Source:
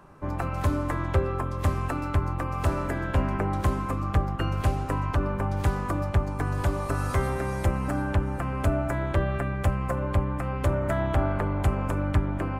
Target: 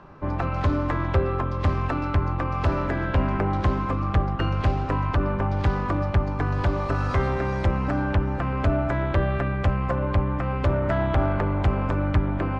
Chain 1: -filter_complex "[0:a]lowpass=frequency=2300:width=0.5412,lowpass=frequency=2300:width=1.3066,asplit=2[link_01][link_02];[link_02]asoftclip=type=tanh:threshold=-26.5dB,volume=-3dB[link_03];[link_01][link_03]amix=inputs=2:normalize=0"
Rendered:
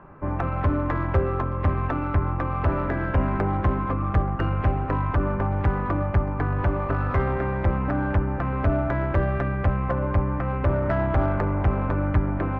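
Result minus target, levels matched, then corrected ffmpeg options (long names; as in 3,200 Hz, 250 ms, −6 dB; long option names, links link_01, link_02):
4,000 Hz band −9.0 dB
-filter_complex "[0:a]lowpass=frequency=5000:width=0.5412,lowpass=frequency=5000:width=1.3066,asplit=2[link_01][link_02];[link_02]asoftclip=type=tanh:threshold=-26.5dB,volume=-3dB[link_03];[link_01][link_03]amix=inputs=2:normalize=0"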